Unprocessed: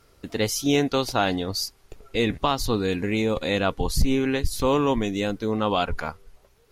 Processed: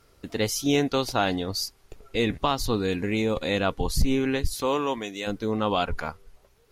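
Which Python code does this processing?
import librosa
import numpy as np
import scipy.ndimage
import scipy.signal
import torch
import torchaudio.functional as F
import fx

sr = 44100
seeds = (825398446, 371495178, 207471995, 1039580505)

y = fx.highpass(x, sr, hz=fx.line((4.53, 290.0), (5.26, 910.0)), slope=6, at=(4.53, 5.26), fade=0.02)
y = y * 10.0 ** (-1.5 / 20.0)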